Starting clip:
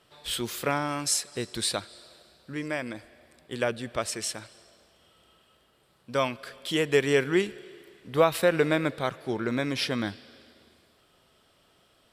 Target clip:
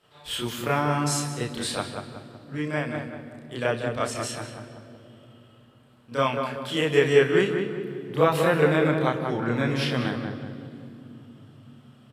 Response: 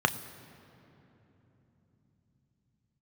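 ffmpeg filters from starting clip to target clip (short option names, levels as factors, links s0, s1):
-filter_complex "[0:a]asplit=2[s0][s1];[s1]adelay=186,lowpass=f=1900:p=1,volume=0.562,asplit=2[s2][s3];[s3]adelay=186,lowpass=f=1900:p=1,volume=0.41,asplit=2[s4][s5];[s5]adelay=186,lowpass=f=1900:p=1,volume=0.41,asplit=2[s6][s7];[s7]adelay=186,lowpass=f=1900:p=1,volume=0.41,asplit=2[s8][s9];[s9]adelay=186,lowpass=f=1900:p=1,volume=0.41[s10];[s0][s2][s4][s6][s8][s10]amix=inputs=6:normalize=0,asplit=2[s11][s12];[1:a]atrim=start_sample=2205,adelay=31[s13];[s12][s13]afir=irnorm=-1:irlink=0,volume=0.531[s14];[s11][s14]amix=inputs=2:normalize=0,volume=0.562"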